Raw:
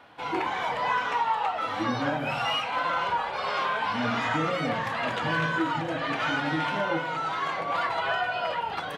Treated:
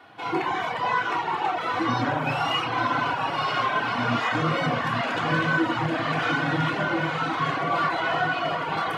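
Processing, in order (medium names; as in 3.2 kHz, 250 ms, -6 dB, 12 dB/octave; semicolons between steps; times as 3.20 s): on a send: echo that smears into a reverb 924 ms, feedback 60%, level -6 dB; on the sum: saturation -18 dBFS, distortion -22 dB; high-pass 110 Hz; bass shelf 160 Hz +3 dB; simulated room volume 2100 m³, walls furnished, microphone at 3.4 m; reverb removal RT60 0.53 s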